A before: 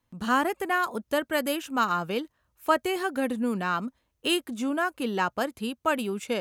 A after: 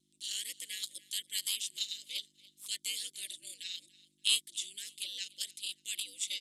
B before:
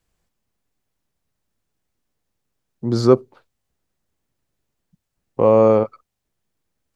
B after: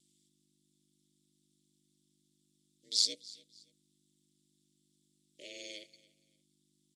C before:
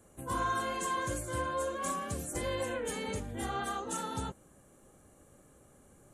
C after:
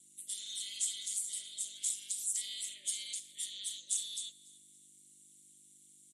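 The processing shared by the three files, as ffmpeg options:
ffmpeg -i in.wav -filter_complex "[0:a]aderivative,crystalizer=i=8:c=0,asuperstop=centerf=990:order=12:qfactor=0.63,apsyclip=-0.5dB,asplit=2[link_01][link_02];[link_02]asoftclip=type=tanh:threshold=-14dB,volume=-8.5dB[link_03];[link_01][link_03]amix=inputs=2:normalize=0,aeval=exprs='val(0)+0.00251*(sin(2*PI*50*n/s)+sin(2*PI*2*50*n/s)/2+sin(2*PI*3*50*n/s)/3+sin(2*PI*4*50*n/s)/4+sin(2*PI*5*50*n/s)/5)':channel_layout=same,aeval=exprs='val(0)*sin(2*PI*100*n/s)':channel_layout=same,highpass=360,equalizer=frequency=410:width_type=q:width=4:gain=-6,equalizer=frequency=740:width_type=q:width=4:gain=-8,equalizer=frequency=1100:width_type=q:width=4:gain=9,equalizer=frequency=2500:width_type=q:width=4:gain=-5,equalizer=frequency=3500:width_type=q:width=4:gain=10,equalizer=frequency=6400:width_type=q:width=4:gain=-6,lowpass=frequency=8000:width=0.5412,lowpass=frequency=8000:width=1.3066,asplit=2[link_04][link_05];[link_05]aecho=0:1:287|574:0.0841|0.0261[link_06];[link_04][link_06]amix=inputs=2:normalize=0,volume=-6dB" out.wav

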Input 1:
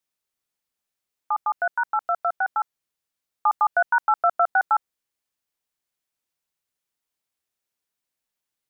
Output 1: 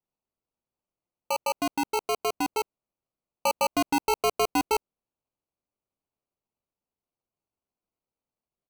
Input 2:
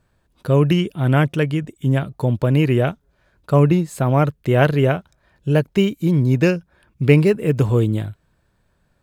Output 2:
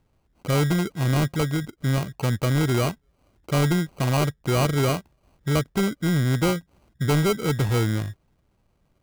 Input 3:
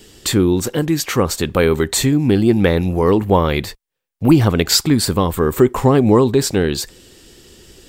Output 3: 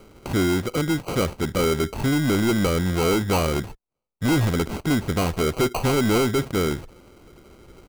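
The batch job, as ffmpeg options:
ffmpeg -i in.wav -af "aresample=8000,asoftclip=type=tanh:threshold=-13.5dB,aresample=44100,acrusher=samples=25:mix=1:aa=0.000001,volume=-2.5dB" out.wav

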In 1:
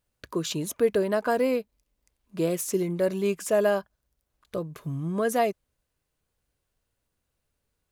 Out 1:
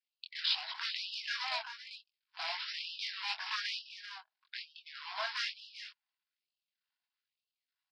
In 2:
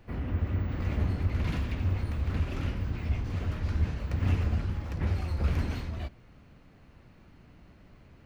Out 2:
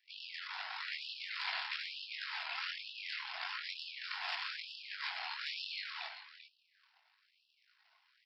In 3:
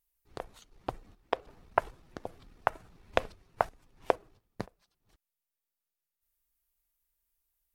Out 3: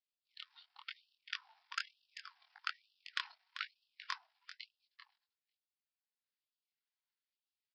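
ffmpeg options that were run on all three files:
ffmpeg -i in.wav -filter_complex "[0:a]aeval=exprs='if(lt(val(0),0),0.251*val(0),val(0))':channel_layout=same,aresample=11025,acrusher=bits=3:mode=log:mix=0:aa=0.000001,aresample=44100,flanger=delay=19.5:depth=5.2:speed=1.4,equalizer=frequency=660:width_type=o:width=0.44:gain=-6,asoftclip=type=tanh:threshold=-25dB,bandreject=frequency=1200:width=9.5,afftdn=noise_reduction=12:noise_floor=-59,highshelf=frequency=3000:gain=4,acrossover=split=340|1100|3100[link_01][link_02][link_03][link_04];[link_01]acompressor=threshold=-39dB:ratio=4[link_05];[link_02]acompressor=threshold=-43dB:ratio=4[link_06];[link_03]acompressor=threshold=-49dB:ratio=4[link_07];[link_05][link_06][link_07][link_04]amix=inputs=4:normalize=0,bandreject=frequency=60:width_type=h:width=6,bandreject=frequency=120:width_type=h:width=6,aecho=1:1:391:0.299,afftfilt=real='re*gte(b*sr/1024,620*pow(2600/620,0.5+0.5*sin(2*PI*1.1*pts/sr)))':imag='im*gte(b*sr/1024,620*pow(2600/620,0.5+0.5*sin(2*PI*1.1*pts/sr)))':win_size=1024:overlap=0.75,volume=10dB" out.wav

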